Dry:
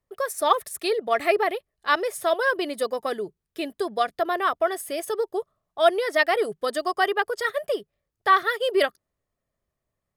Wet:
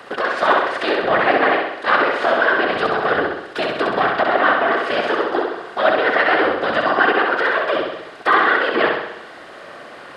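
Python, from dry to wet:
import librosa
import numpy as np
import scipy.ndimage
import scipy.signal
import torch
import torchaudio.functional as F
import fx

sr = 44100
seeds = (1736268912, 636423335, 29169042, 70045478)

p1 = fx.bin_compress(x, sr, power=0.4)
p2 = scipy.signal.sosfilt(scipy.signal.butter(2, 5700.0, 'lowpass', fs=sr, output='sos'), p1)
p3 = fx.env_lowpass_down(p2, sr, base_hz=2800.0, full_db=-15.5)
p4 = scipy.signal.sosfilt(scipy.signal.butter(2, 160.0, 'highpass', fs=sr, output='sos'), p3)
p5 = fx.low_shelf(p4, sr, hz=470.0, db=-5.0)
p6 = fx.small_body(p5, sr, hz=(230.0, 1500.0, 2800.0), ring_ms=90, db=12)
p7 = fx.whisperise(p6, sr, seeds[0])
y = p7 + fx.echo_feedback(p7, sr, ms=65, feedback_pct=57, wet_db=-3.5, dry=0)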